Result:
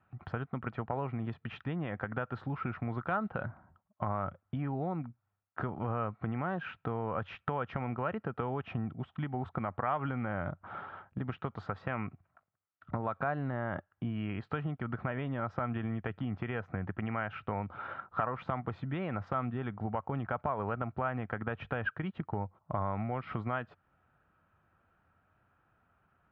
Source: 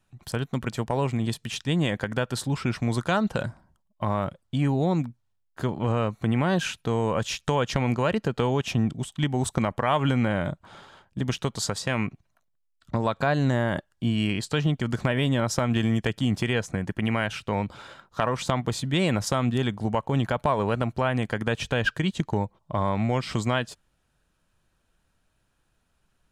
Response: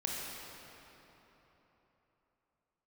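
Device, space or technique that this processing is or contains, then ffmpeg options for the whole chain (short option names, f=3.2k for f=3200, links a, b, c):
bass amplifier: -af "acompressor=threshold=-37dB:ratio=3,highpass=75,equalizer=f=91:t=q:w=4:g=7,equalizer=f=750:t=q:w=4:g=6,equalizer=f=1.3k:t=q:w=4:g=10,lowpass=f=2.3k:w=0.5412,lowpass=f=2.3k:w=1.3066"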